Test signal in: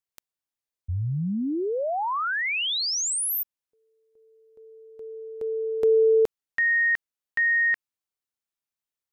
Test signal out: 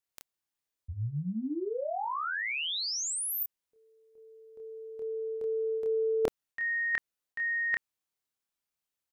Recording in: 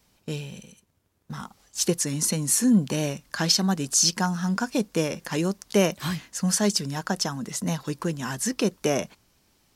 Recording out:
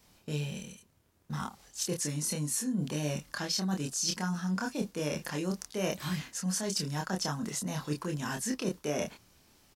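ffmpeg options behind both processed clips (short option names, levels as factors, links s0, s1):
-filter_complex "[0:a]areverse,acompressor=threshold=0.0141:ratio=4:attack=42:release=150:knee=6:detection=peak,areverse,asplit=2[s0][s1];[s1]adelay=27,volume=0.708[s2];[s0][s2]amix=inputs=2:normalize=0"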